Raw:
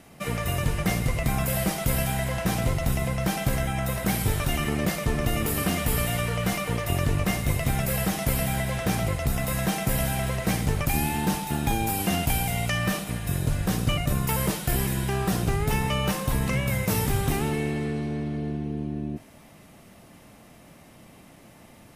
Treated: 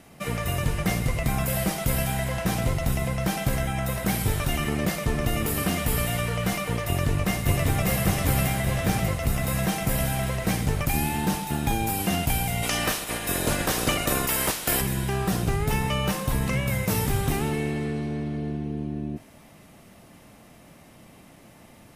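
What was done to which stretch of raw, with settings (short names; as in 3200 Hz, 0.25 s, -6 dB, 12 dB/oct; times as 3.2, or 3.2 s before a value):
6.86–7.88 echo throw 0.59 s, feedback 60%, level -2 dB
12.62–14.8 spectral limiter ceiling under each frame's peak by 19 dB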